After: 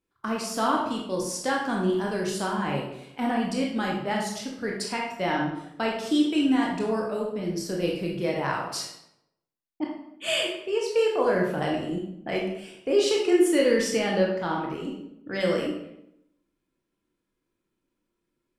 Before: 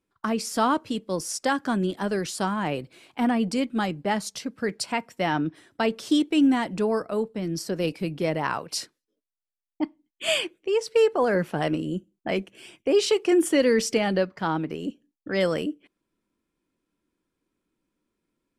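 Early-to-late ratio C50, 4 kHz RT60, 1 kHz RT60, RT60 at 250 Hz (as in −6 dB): 3.0 dB, 0.55 s, 0.75 s, 0.90 s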